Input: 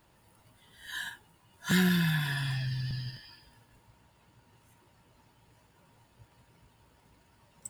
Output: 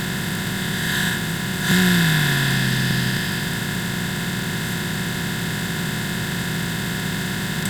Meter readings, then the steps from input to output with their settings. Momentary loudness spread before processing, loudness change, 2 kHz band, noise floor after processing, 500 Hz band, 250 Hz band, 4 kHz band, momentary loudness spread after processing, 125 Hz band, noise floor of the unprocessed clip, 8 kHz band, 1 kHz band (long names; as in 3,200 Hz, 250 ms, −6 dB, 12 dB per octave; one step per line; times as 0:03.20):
17 LU, +9.5 dB, +16.0 dB, −26 dBFS, +17.0 dB, +13.0 dB, +16.5 dB, 7 LU, +12.5 dB, −65 dBFS, +19.0 dB, +17.0 dB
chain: compressor on every frequency bin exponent 0.2
bit reduction 9 bits
level +6 dB